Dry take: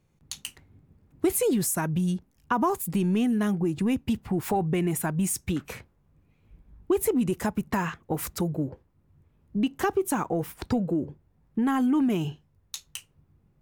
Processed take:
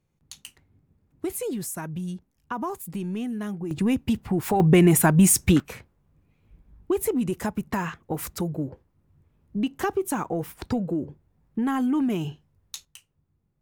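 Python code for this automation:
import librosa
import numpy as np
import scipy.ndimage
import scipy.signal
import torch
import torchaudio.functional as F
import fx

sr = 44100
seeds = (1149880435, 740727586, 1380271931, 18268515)

y = fx.gain(x, sr, db=fx.steps((0.0, -6.0), (3.71, 2.5), (4.6, 10.0), (5.6, -0.5), (12.85, -9.5)))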